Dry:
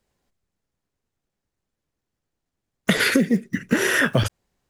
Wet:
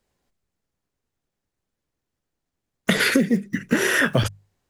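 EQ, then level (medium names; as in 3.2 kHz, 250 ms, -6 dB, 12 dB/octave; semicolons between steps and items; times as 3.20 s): hum notches 50/100/150/200 Hz; 0.0 dB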